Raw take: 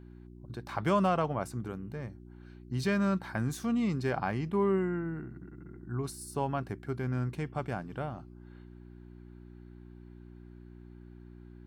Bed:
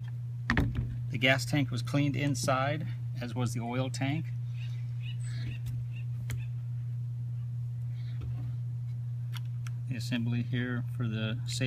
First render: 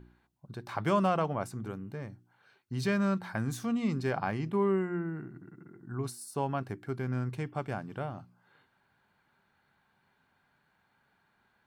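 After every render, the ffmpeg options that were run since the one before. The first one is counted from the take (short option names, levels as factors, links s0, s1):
-af "bandreject=f=60:t=h:w=4,bandreject=f=120:t=h:w=4,bandreject=f=180:t=h:w=4,bandreject=f=240:t=h:w=4,bandreject=f=300:t=h:w=4,bandreject=f=360:t=h:w=4"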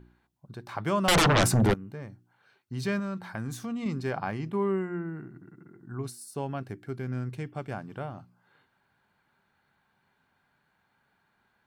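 -filter_complex "[0:a]asettb=1/sr,asplit=3[s0][s1][s2];[s0]atrim=end=1.084[s3];[s1]atrim=start=1.08:end=1.74,asetpts=PTS-STARTPTS,afade=t=in:d=0.004:c=qsin,afade=t=out:st=0.656:d=0.004:c=qsin,aeval=exprs='0.133*sin(PI/2*7.08*val(0)/0.133)':c=same[s4];[s2]atrim=start=1.736[s5];[s3][s4]acrossfade=d=0.004:c1=hsin:c2=qsin[s6];[s6][s5]acrossfade=d=0.004:c1=qsin:c2=hsin,asettb=1/sr,asplit=3[s7][s8][s9];[s7]atrim=end=2.994[s10];[s8]atrim=start=2.99:end=3.86,asetpts=PTS-STARTPTS,afade=t=in:d=0.004:c=qsin,afade=t=out:st=0.866:d=0.004:c=qsin,acompressor=threshold=0.0316:ratio=3:attack=3.2:release=140:knee=1:detection=peak[s11];[s9]atrim=start=3.856[s12];[s10][s11]acrossfade=d=0.004:c1=hsin:c2=qsin[s13];[s13][s12]acrossfade=d=0.004:c1=qsin:c2=hsin,asettb=1/sr,asplit=3[s14][s15][s16];[s14]atrim=end=6.024[s17];[s15]atrim=start=6.02:end=7.71,asetpts=PTS-STARTPTS,afade=t=in:d=0.004:c=qsin,afade=t=out:st=1.686:d=0.004:c=qsin,equalizer=f=1000:w=1.6:g=-5.5[s18];[s16]atrim=start=7.706[s19];[s17][s18]acrossfade=d=0.004:c1=hsin:c2=qsin[s20];[s20][s19]acrossfade=d=0.004:c1=qsin:c2=hsin"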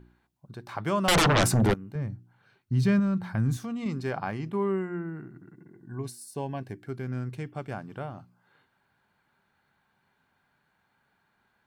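-filter_complex "[0:a]asettb=1/sr,asplit=3[s0][s1][s2];[s0]atrim=end=1.954[s3];[s1]atrim=start=1.95:end=3.57,asetpts=PTS-STARTPTS,afade=t=in:d=0.004:c=qsin,afade=t=out:st=1.616:d=0.004:c=qsin,bass=f=250:g=12,treble=f=4000:g=-2[s4];[s2]atrim=start=3.566[s5];[s3][s4]acrossfade=d=0.004:c1=hsin:c2=qsin[s6];[s6][s5]acrossfade=d=0.004:c1=qsin:c2=hsin,asettb=1/sr,asplit=3[s7][s8][s9];[s7]atrim=end=5.534[s10];[s8]atrim=start=5.53:end=6.8,asetpts=PTS-STARTPTS,afade=t=in:d=0.004:c=qsin,afade=t=out:st=1.266:d=0.004:c=qsin,asuperstop=centerf=1300:order=8:qfactor=4.6[s11];[s9]atrim=start=6.796[s12];[s10][s11]acrossfade=d=0.004:c1=hsin:c2=qsin[s13];[s13][s12]acrossfade=d=0.004:c1=qsin:c2=hsin"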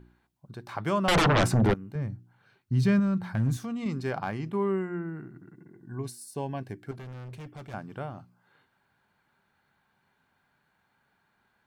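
-filter_complex "[0:a]asettb=1/sr,asplit=3[s0][s1][s2];[s0]atrim=end=0.984[s3];[s1]atrim=start=0.98:end=1.76,asetpts=PTS-STARTPTS,afade=t=in:d=0.004:c=qsin,afade=t=out:st=0.776:d=0.004:c=qsin,highshelf=f=5400:g=-11[s4];[s2]atrim=start=1.756[s5];[s3][s4]acrossfade=d=0.004:c1=hsin:c2=qsin[s6];[s6][s5]acrossfade=d=0.004:c1=qsin:c2=hsin,asettb=1/sr,asplit=3[s7][s8][s9];[s7]atrim=end=3.174[s10];[s8]atrim=start=3.17:end=4.43,asetpts=PTS-STARTPTS,afade=t=in:d=0.004:c=qsin,afade=t=out:st=1.256:d=0.004:c=qsin,asoftclip=type=hard:threshold=0.0944[s11];[s9]atrim=start=4.426[s12];[s10][s11]acrossfade=d=0.004:c1=hsin:c2=qsin[s13];[s13][s12]acrossfade=d=0.004:c1=qsin:c2=hsin,asettb=1/sr,asplit=3[s14][s15][s16];[s14]atrim=end=6.914[s17];[s15]atrim=start=6.91:end=7.74,asetpts=PTS-STARTPTS,afade=t=in:d=0.004:c=qsin,afade=t=out:st=0.826:d=0.004:c=qsin,asoftclip=type=hard:threshold=0.0106[s18];[s16]atrim=start=7.736[s19];[s17][s18]acrossfade=d=0.004:c1=hsin:c2=qsin[s20];[s20][s19]acrossfade=d=0.004:c1=qsin:c2=hsin"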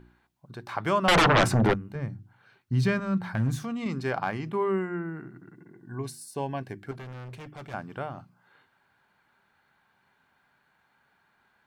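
-af "equalizer=f=1600:w=0.36:g=4.5,bandreject=f=50:t=h:w=6,bandreject=f=100:t=h:w=6,bandreject=f=150:t=h:w=6,bandreject=f=200:t=h:w=6"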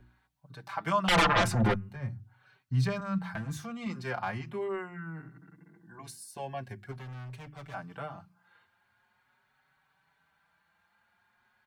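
-filter_complex "[0:a]acrossover=split=260|450|5600[s0][s1][s2][s3];[s1]acrusher=bits=3:mix=0:aa=0.5[s4];[s0][s4][s2][s3]amix=inputs=4:normalize=0,asplit=2[s5][s6];[s6]adelay=4.9,afreqshift=0.42[s7];[s5][s7]amix=inputs=2:normalize=1"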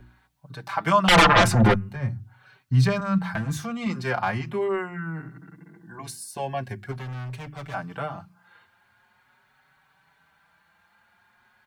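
-af "volume=2.66"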